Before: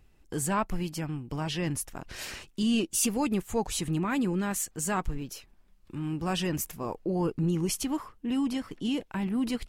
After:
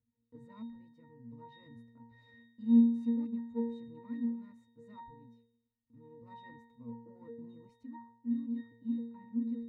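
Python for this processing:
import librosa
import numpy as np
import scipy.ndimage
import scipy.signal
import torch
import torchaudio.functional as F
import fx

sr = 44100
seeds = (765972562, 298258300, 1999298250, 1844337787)

y = fx.cheby_harmonics(x, sr, harmonics=(3, 4, 6), levels_db=(-21, -15, -17), full_scale_db=-15.5)
y = fx.octave_resonator(y, sr, note='A#', decay_s=0.64)
y = fx.small_body(y, sr, hz=(240.0, 1400.0), ring_ms=45, db=9)
y = y * librosa.db_to_amplitude(1.5)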